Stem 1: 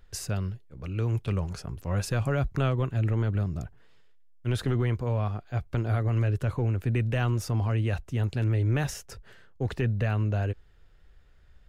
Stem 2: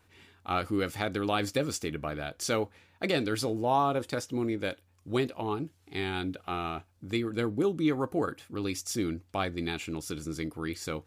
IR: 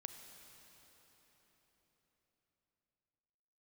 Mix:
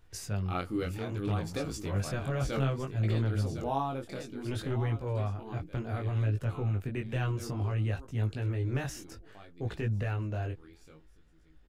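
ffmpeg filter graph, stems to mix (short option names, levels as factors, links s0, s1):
-filter_complex "[0:a]volume=0.75,asplit=2[s0][s1];[1:a]equalizer=f=160:w=0.51:g=4.5,volume=0.631,afade=t=out:st=3.73:d=0.68:silence=0.446684,afade=t=out:st=7.44:d=0.36:silence=0.334965,asplit=2[s2][s3];[s3]volume=0.237[s4];[s1]apad=whole_len=488014[s5];[s2][s5]sidechaincompress=threshold=0.0251:ratio=4:attack=7.4:release=146[s6];[s4]aecho=0:1:1058:1[s7];[s0][s6][s7]amix=inputs=3:normalize=0,flanger=delay=18:depth=5:speed=0.62"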